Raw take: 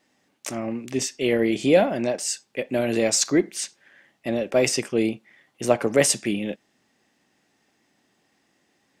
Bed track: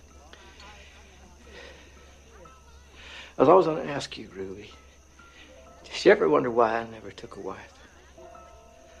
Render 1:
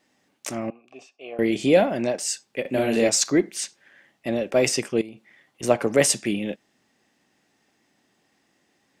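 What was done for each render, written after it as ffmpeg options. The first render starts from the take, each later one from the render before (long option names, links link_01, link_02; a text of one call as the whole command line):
ffmpeg -i in.wav -filter_complex "[0:a]asettb=1/sr,asplit=3[link_01][link_02][link_03];[link_01]atrim=end=0.704[link_04];[link_02]atrim=start=0.7:end=1.39,asetpts=PTS-STARTPTS,afade=type=in:duration=0.004:curve=qsin,afade=type=out:start_time=0.686:duration=0.004:curve=qsin,asplit=3[link_05][link_06][link_07];[link_05]bandpass=frequency=730:width_type=q:width=8,volume=0dB[link_08];[link_06]bandpass=frequency=1090:width_type=q:width=8,volume=-6dB[link_09];[link_07]bandpass=frequency=2440:width_type=q:width=8,volume=-9dB[link_10];[link_08][link_09][link_10]amix=inputs=3:normalize=0[link_11];[link_03]atrim=start=1.386[link_12];[link_04][link_11]acrossfade=duration=0.004:curve1=hsin:curve2=qsin[link_13];[link_13][link_12]acrossfade=duration=0.004:curve1=qsin:curve2=hsin,asettb=1/sr,asplit=3[link_14][link_15][link_16];[link_14]atrim=end=2.614[link_17];[link_15]atrim=start=2.61:end=3.09,asetpts=PTS-STARTPTS,afade=type=in:duration=0.004:curve=qsin,afade=type=out:start_time=0.476:duration=0.004:curve=qsin,asplit=2[link_18][link_19];[link_19]adelay=39,volume=-3dB[link_20];[link_18][link_20]amix=inputs=2:normalize=0,atrim=end_sample=21168[link_21];[link_16]atrim=start=3.086[link_22];[link_17][link_21]acrossfade=duration=0.004:curve1=hsin:curve2=qsin[link_23];[link_23][link_22]acrossfade=duration=0.004:curve1=qsin:curve2=hsin,asettb=1/sr,asplit=3[link_24][link_25][link_26];[link_24]atrim=end=5.014[link_27];[link_25]atrim=start=5.01:end=5.63,asetpts=PTS-STARTPTS,afade=type=in:duration=0.004:curve=qsin,afade=type=out:start_time=0.616:duration=0.004:curve=qsin,acompressor=threshold=-35dB:ratio=8:attack=3.2:release=140:knee=1:detection=peak[link_28];[link_26]atrim=start=5.626[link_29];[link_27][link_28]acrossfade=duration=0.004:curve1=hsin:curve2=qsin[link_30];[link_30][link_29]acrossfade=duration=0.004:curve1=qsin:curve2=hsin" out.wav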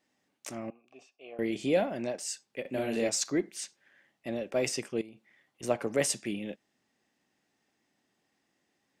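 ffmpeg -i in.wav -af "volume=-9.5dB" out.wav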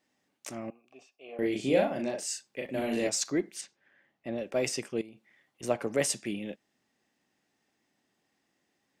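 ffmpeg -i in.wav -filter_complex "[0:a]asettb=1/sr,asplit=3[link_01][link_02][link_03];[link_01]atrim=end=1.254[link_04];[link_02]atrim=start=1.25:end=3.07,asetpts=PTS-STARTPTS,afade=type=in:duration=0.004:curve=qsin,afade=type=out:start_time=1.816:duration=0.004:curve=qsin,asplit=2[link_05][link_06];[link_06]adelay=38,volume=-3dB[link_07];[link_05][link_07]amix=inputs=2:normalize=0,atrim=end_sample=80262[link_08];[link_03]atrim=start=3.066[link_09];[link_04][link_08]acrossfade=duration=0.004:curve1=hsin:curve2=qsin[link_10];[link_10][link_09]acrossfade=duration=0.004:curve1=qsin:curve2=hsin,asettb=1/sr,asplit=3[link_11][link_12][link_13];[link_11]atrim=end=3.614[link_14];[link_12]atrim=start=3.61:end=4.38,asetpts=PTS-STARTPTS,afade=type=in:duration=0.004:curve=qsin,afade=type=out:start_time=0.766:duration=0.004:curve=qsin,lowpass=frequency=2200:poles=1[link_15];[link_13]atrim=start=4.376[link_16];[link_14][link_15]acrossfade=duration=0.004:curve1=hsin:curve2=qsin[link_17];[link_17][link_16]acrossfade=duration=0.004:curve1=qsin:curve2=hsin" out.wav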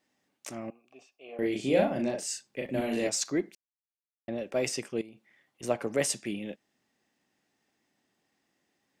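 ffmpeg -i in.wav -filter_complex "[0:a]asettb=1/sr,asplit=3[link_01][link_02][link_03];[link_01]atrim=end=1.794[link_04];[link_02]atrim=start=1.79:end=2.81,asetpts=PTS-STARTPTS,afade=type=in:duration=0.004:curve=qsin,afade=type=out:start_time=1.016:duration=0.004:curve=qsin,lowshelf=frequency=260:gain=7[link_05];[link_03]atrim=start=2.806[link_06];[link_04][link_05]acrossfade=duration=0.004:curve1=hsin:curve2=qsin[link_07];[link_07][link_06]acrossfade=duration=0.004:curve1=qsin:curve2=hsin,asplit=3[link_08][link_09][link_10];[link_08]atrim=end=3.55,asetpts=PTS-STARTPTS,afade=type=out:start_time=3.546:duration=0.004:curve=hsin[link_11];[link_09]atrim=start=3.55:end=4.28,asetpts=PTS-STARTPTS,volume=0[link_12];[link_10]atrim=start=4.28,asetpts=PTS-STARTPTS,afade=type=in:duration=0.004:curve=hsin[link_13];[link_11][link_12][link_13]concat=n=3:v=0:a=1" out.wav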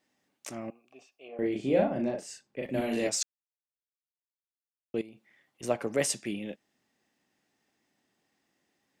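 ffmpeg -i in.wav -filter_complex "[0:a]asettb=1/sr,asplit=3[link_01][link_02][link_03];[link_01]atrim=end=1.284[link_04];[link_02]atrim=start=1.28:end=2.63,asetpts=PTS-STARTPTS,afade=type=in:duration=0.004:curve=qsin,afade=type=out:start_time=1.346:duration=0.004:curve=qsin,highshelf=frequency=2600:gain=-11.5[link_05];[link_03]atrim=start=2.626[link_06];[link_04][link_05]acrossfade=duration=0.004:curve1=hsin:curve2=qsin[link_07];[link_07][link_06]acrossfade=duration=0.004:curve1=qsin:curve2=hsin,asplit=3[link_08][link_09][link_10];[link_08]atrim=end=3.23,asetpts=PTS-STARTPTS,afade=type=out:start_time=3.226:duration=0.004:curve=hsin[link_11];[link_09]atrim=start=3.23:end=4.94,asetpts=PTS-STARTPTS,volume=0[link_12];[link_10]atrim=start=4.94,asetpts=PTS-STARTPTS,afade=type=in:duration=0.004:curve=hsin[link_13];[link_11][link_12][link_13]concat=n=3:v=0:a=1" out.wav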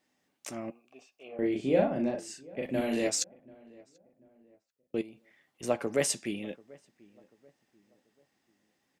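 ffmpeg -i in.wav -filter_complex "[0:a]asplit=2[link_01][link_02];[link_02]adelay=12,volume=-13dB[link_03];[link_01][link_03]amix=inputs=2:normalize=0,asplit=2[link_04][link_05];[link_05]adelay=738,lowpass=frequency=1300:poles=1,volume=-23dB,asplit=2[link_06][link_07];[link_07]adelay=738,lowpass=frequency=1300:poles=1,volume=0.4,asplit=2[link_08][link_09];[link_09]adelay=738,lowpass=frequency=1300:poles=1,volume=0.4[link_10];[link_04][link_06][link_08][link_10]amix=inputs=4:normalize=0" out.wav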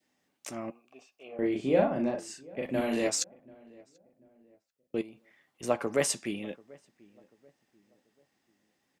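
ffmpeg -i in.wav -af "adynamicequalizer=threshold=0.00316:dfrequency=1100:dqfactor=1.7:tfrequency=1100:tqfactor=1.7:attack=5:release=100:ratio=0.375:range=3:mode=boostabove:tftype=bell" out.wav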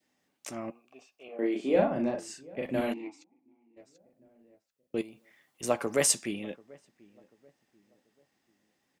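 ffmpeg -i in.wav -filter_complex "[0:a]asettb=1/sr,asplit=3[link_01][link_02][link_03];[link_01]atrim=end=1.284[link_04];[link_02]atrim=start=1.28:end=1.76,asetpts=PTS-STARTPTS,afade=type=in:duration=0.004:curve=qsin,afade=type=out:start_time=0.476:duration=0.004:curve=qsin,highpass=frequency=220:width=0.5412,highpass=frequency=220:width=1.3066[link_05];[link_03]atrim=start=1.756[link_06];[link_04][link_05]acrossfade=duration=0.004:curve1=hsin:curve2=qsin[link_07];[link_07][link_06]acrossfade=duration=0.004:curve1=qsin:curve2=hsin,asplit=3[link_08][link_09][link_10];[link_08]afade=type=out:start_time=2.92:duration=0.02[link_11];[link_09]asplit=3[link_12][link_13][link_14];[link_12]bandpass=frequency=300:width_type=q:width=8,volume=0dB[link_15];[link_13]bandpass=frequency=870:width_type=q:width=8,volume=-6dB[link_16];[link_14]bandpass=frequency=2240:width_type=q:width=8,volume=-9dB[link_17];[link_15][link_16][link_17]amix=inputs=3:normalize=0,afade=type=in:start_time=2.92:duration=0.02,afade=type=out:start_time=3.76:duration=0.02[link_18];[link_10]afade=type=in:start_time=3.76:duration=0.02[link_19];[link_11][link_18][link_19]amix=inputs=3:normalize=0,asettb=1/sr,asplit=3[link_20][link_21][link_22];[link_20]atrim=end=4.974[link_23];[link_21]atrim=start=4.97:end=6.26,asetpts=PTS-STARTPTS,afade=type=in:duration=0.004:curve=qsin,afade=type=out:start_time=1.286:duration=0.004:curve=qsin,highshelf=frequency=5300:gain=9[link_24];[link_22]atrim=start=6.256[link_25];[link_23][link_24]acrossfade=duration=0.004:curve1=hsin:curve2=qsin[link_26];[link_26][link_25]acrossfade=duration=0.004:curve1=qsin:curve2=hsin" out.wav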